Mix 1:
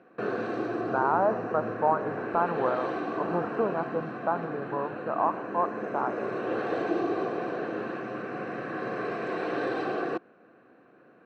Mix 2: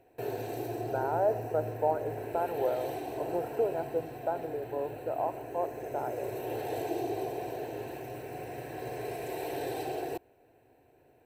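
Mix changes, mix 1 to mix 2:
background: remove speaker cabinet 190–5100 Hz, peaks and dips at 320 Hz +6 dB, 520 Hz +8 dB, 930 Hz -9 dB, 1500 Hz +8 dB; master: add fixed phaser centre 480 Hz, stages 4

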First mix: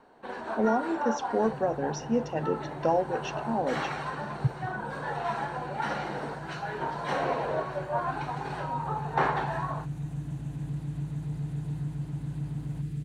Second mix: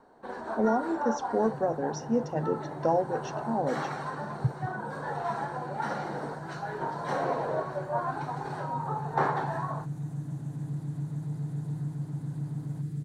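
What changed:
second sound: add HPF 100 Hz 24 dB/oct; master: add bell 2700 Hz -11.5 dB 0.82 oct

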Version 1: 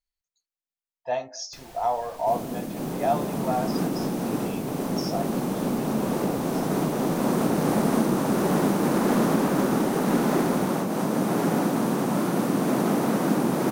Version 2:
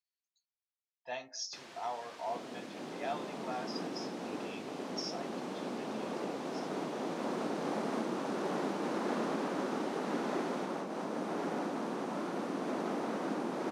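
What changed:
speech: add bell 610 Hz -15 dB 2.2 oct; second sound -10.0 dB; master: add BPF 290–5300 Hz

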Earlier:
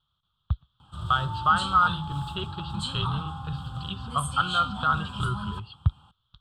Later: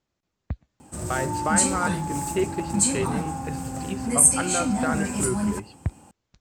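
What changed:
speech -4.5 dB; master: remove EQ curve 140 Hz 0 dB, 270 Hz -20 dB, 430 Hz -19 dB, 630 Hz -16 dB, 1300 Hz +7 dB, 2100 Hz -29 dB, 3300 Hz +14 dB, 6200 Hz -27 dB, 9000 Hz -23 dB

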